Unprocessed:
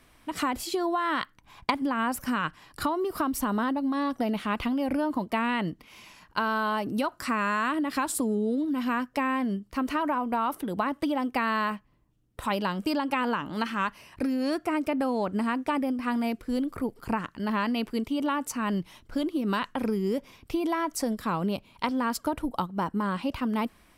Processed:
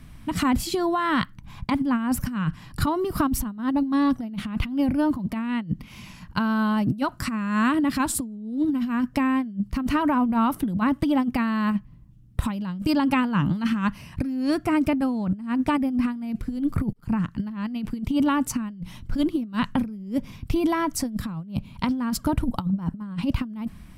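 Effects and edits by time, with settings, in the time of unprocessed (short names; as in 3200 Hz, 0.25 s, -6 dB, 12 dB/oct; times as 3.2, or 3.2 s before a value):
16.93–17.52 fade in
whole clip: resonant low shelf 270 Hz +14 dB, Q 1.5; negative-ratio compressor -23 dBFS, ratio -0.5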